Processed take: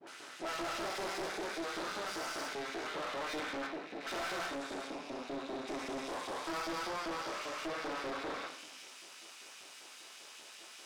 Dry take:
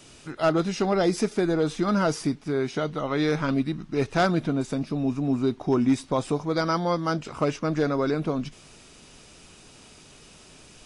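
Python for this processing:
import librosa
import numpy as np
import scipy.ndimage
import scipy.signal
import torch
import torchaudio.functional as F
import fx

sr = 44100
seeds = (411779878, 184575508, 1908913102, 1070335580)

y = fx.spec_steps(x, sr, hold_ms=400)
y = fx.high_shelf(y, sr, hz=2400.0, db=-11.0, at=(3.33, 3.94))
y = fx.dispersion(y, sr, late='highs', ms=70.0, hz=580.0)
y = fx.filter_lfo_highpass(y, sr, shape='saw_up', hz=5.1, low_hz=230.0, high_hz=3000.0, q=1.5)
y = fx.rev_fdn(y, sr, rt60_s=0.61, lf_ratio=1.2, hf_ratio=0.9, size_ms=53.0, drr_db=0.0)
y = np.maximum(y, 0.0)
y = fx.weighting(y, sr, curve='A')
y = 10.0 ** (-36.0 / 20.0) * np.tanh(y / 10.0 ** (-36.0 / 20.0))
y = y * librosa.db_to_amplitude(2.0)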